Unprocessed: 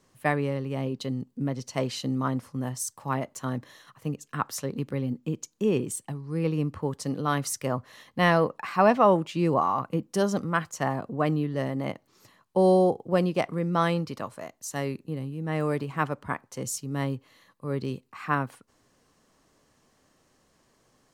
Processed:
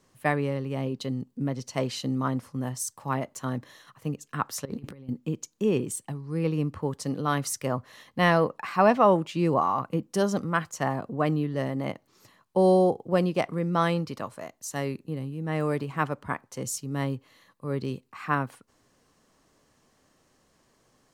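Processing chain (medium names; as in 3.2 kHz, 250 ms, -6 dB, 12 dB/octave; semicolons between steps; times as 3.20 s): 4.65–5.09 s: compressor with a negative ratio -37 dBFS, ratio -0.5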